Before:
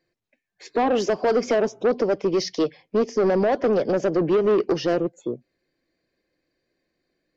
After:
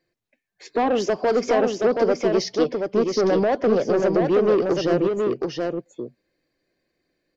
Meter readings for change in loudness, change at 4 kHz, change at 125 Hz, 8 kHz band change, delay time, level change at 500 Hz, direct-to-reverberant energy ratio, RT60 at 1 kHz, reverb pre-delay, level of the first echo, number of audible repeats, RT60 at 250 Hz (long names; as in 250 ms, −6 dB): +1.0 dB, +1.5 dB, +1.5 dB, can't be measured, 725 ms, +1.5 dB, no reverb audible, no reverb audible, no reverb audible, −4.0 dB, 1, no reverb audible